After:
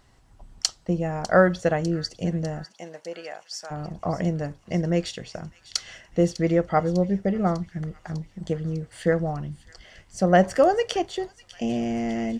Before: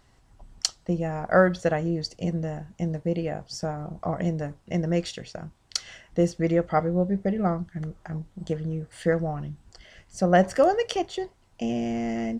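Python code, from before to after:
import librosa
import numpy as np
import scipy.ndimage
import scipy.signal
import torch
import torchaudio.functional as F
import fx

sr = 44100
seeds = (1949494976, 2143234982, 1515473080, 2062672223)

y = fx.highpass(x, sr, hz=fx.line((2.63, 480.0), (3.7, 1200.0)), slope=12, at=(2.63, 3.7), fade=0.02)
y = fx.echo_wet_highpass(y, sr, ms=600, feedback_pct=65, hz=2600.0, wet_db=-14.5)
y = y * librosa.db_to_amplitude(1.5)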